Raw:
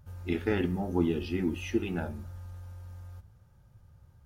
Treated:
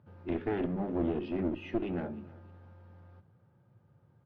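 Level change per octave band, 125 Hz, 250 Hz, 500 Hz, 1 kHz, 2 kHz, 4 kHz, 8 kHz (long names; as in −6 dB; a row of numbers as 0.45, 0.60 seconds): −6.0 dB, −3.0 dB, −2.0 dB, −1.0 dB, −7.5 dB, −9.5 dB, below −20 dB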